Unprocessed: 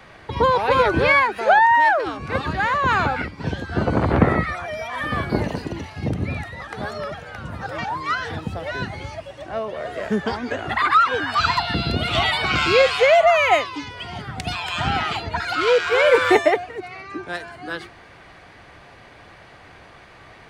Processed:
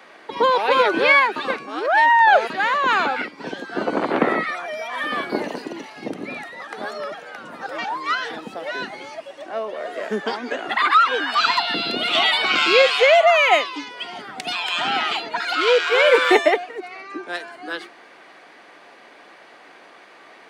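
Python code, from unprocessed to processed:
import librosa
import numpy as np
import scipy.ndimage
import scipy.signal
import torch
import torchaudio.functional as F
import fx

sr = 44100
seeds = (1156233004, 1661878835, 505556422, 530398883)

y = fx.edit(x, sr, fx.reverse_span(start_s=1.36, length_s=1.14), tone=tone)
y = scipy.signal.sosfilt(scipy.signal.butter(4, 250.0, 'highpass', fs=sr, output='sos'), y)
y = fx.dynamic_eq(y, sr, hz=3200.0, q=1.3, threshold_db=-36.0, ratio=4.0, max_db=5)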